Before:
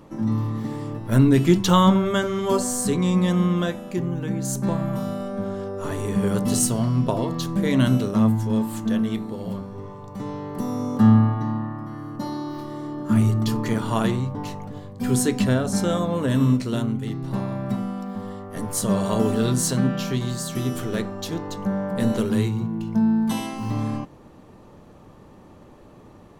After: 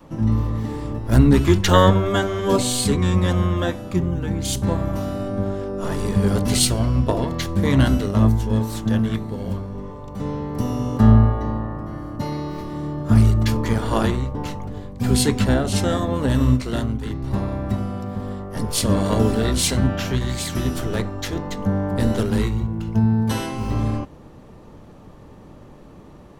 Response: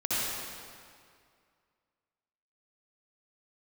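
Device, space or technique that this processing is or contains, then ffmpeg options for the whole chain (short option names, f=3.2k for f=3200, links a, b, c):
octave pedal: -filter_complex "[0:a]asplit=2[a][b];[b]asetrate=22050,aresample=44100,atempo=2,volume=-1dB[c];[a][c]amix=inputs=2:normalize=0,adynamicequalizer=threshold=0.0316:dfrequency=160:dqfactor=1.3:tfrequency=160:tqfactor=1.3:attack=5:release=100:ratio=0.375:range=3:mode=cutabove:tftype=bell,volume=1.5dB"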